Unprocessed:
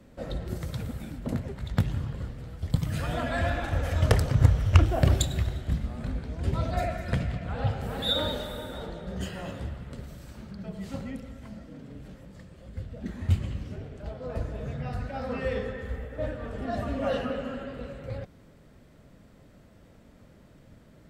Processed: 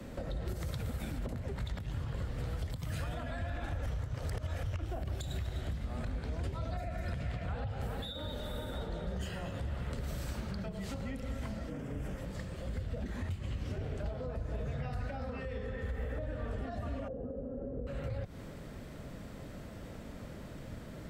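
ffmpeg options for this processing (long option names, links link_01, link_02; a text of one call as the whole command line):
ffmpeg -i in.wav -filter_complex "[0:a]asettb=1/sr,asplit=3[link_01][link_02][link_03];[link_01]atrim=end=11.704[link_04];[link_02]atrim=start=11.7:end=12.18,asetpts=PTS-STARTPTS,afade=type=in:duration=0.004:curve=qsin,afade=type=out:start_time=0.476:duration=0.004:curve=qsin,equalizer=frequency=4100:width_type=o:width=0.41:gain=-15[link_05];[link_03]atrim=start=12.176[link_06];[link_04][link_05]acrossfade=duration=0.004:curve1=hsin:curve2=qsin[link_07];[link_07][link_06]acrossfade=duration=0.004:curve1=qsin:curve2=hsin,asettb=1/sr,asplit=3[link_08][link_09][link_10];[link_08]atrim=end=17.084[link_11];[link_09]atrim=start=17.08:end=17.87,asetpts=PTS-STARTPTS,afade=type=in:duration=0.004:curve=qsin,afade=type=out:start_time=0.786:duration=0.004:curve=qsin,lowpass=frequency=430:width_type=q:width=2[link_12];[link_10]atrim=start=17.866[link_13];[link_11][link_12]acrossfade=duration=0.004:curve1=hsin:curve2=qsin[link_14];[link_14][link_13]acrossfade=duration=0.004:curve1=qsin:curve2=hsin,asplit=3[link_15][link_16][link_17];[link_15]atrim=end=3.862[link_18];[link_16]atrim=start=3.858:end=4.632,asetpts=PTS-STARTPTS,areverse[link_19];[link_17]atrim=start=4.628[link_20];[link_18][link_19]acrossfade=duration=0.004:curve1=hsin:curve2=hsin[link_21];[link_21][link_20]acrossfade=duration=0.004:curve1=hsin:curve2=hsin,acompressor=threshold=-38dB:ratio=6,alimiter=level_in=9.5dB:limit=-24dB:level=0:latency=1:release=71,volume=-9.5dB,acrossover=split=120|340[link_22][link_23][link_24];[link_22]acompressor=threshold=-43dB:ratio=4[link_25];[link_23]acompressor=threshold=-57dB:ratio=4[link_26];[link_24]acompressor=threshold=-52dB:ratio=4[link_27];[link_25][link_26][link_27]amix=inputs=3:normalize=0,volume=9dB" out.wav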